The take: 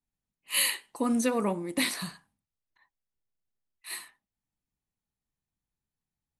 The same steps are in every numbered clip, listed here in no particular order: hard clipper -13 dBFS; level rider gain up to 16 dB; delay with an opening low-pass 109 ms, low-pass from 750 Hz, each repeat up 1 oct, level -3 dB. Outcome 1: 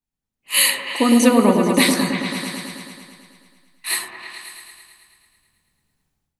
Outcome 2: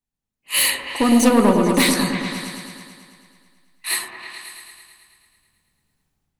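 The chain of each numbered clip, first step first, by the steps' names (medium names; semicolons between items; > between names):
hard clipper > delay with an opening low-pass > level rider; level rider > hard clipper > delay with an opening low-pass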